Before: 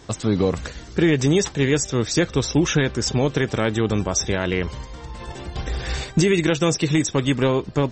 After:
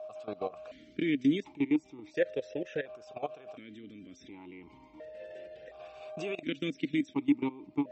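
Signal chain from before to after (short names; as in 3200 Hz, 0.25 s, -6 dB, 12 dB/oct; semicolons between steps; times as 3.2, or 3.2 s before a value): whine 620 Hz -31 dBFS; level quantiser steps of 18 dB; vowel sequencer 1.4 Hz; gain +1.5 dB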